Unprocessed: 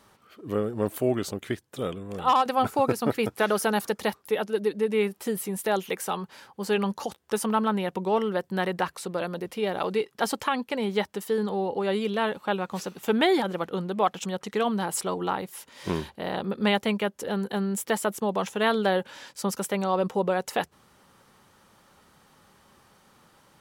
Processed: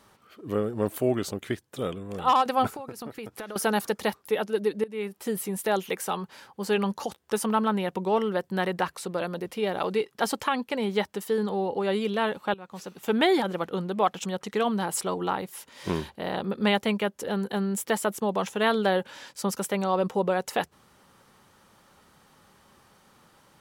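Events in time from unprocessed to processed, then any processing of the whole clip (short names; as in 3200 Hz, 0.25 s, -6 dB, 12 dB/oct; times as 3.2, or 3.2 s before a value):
2.73–3.56 compressor 8:1, threshold -34 dBFS
4.84–5.35 fade in, from -18.5 dB
12.54–13.22 fade in, from -19 dB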